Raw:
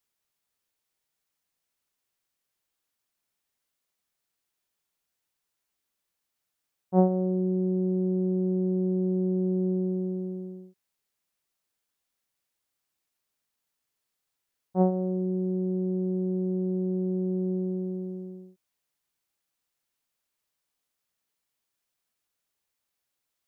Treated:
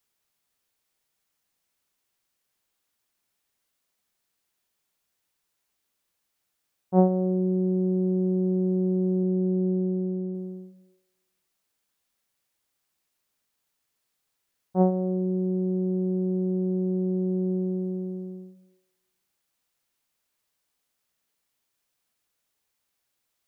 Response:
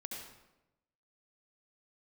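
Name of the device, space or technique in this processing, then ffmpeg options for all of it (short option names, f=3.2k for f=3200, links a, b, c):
compressed reverb return: -filter_complex "[0:a]asplit=2[a][b];[1:a]atrim=start_sample=2205[c];[b][c]afir=irnorm=-1:irlink=0,acompressor=threshold=-44dB:ratio=6,volume=-4.5dB[d];[a][d]amix=inputs=2:normalize=0,asettb=1/sr,asplit=3[e][f][g];[e]atrim=end=9.234[h];[f]atrim=start=9.23:end=10.35,asetpts=PTS-STARTPTS,afade=t=in:d=0.004:c=qsin,afade=t=out:st=1.116:d=0.004:c=qsin,lowpass=f=1.2k:p=1[i];[g]atrim=start=10.346[j];[h][i]acrossfade=d=0.004:c1=hsin:c2=qsin[k];[k][j]acrossfade=d=0.004:c1=qsin:c2=hsin,volume=1.5dB"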